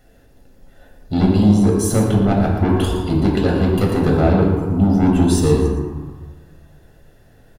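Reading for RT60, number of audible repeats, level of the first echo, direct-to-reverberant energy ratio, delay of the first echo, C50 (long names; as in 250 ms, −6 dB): 1.5 s, 1, −9.5 dB, −1.5 dB, 116 ms, 2.0 dB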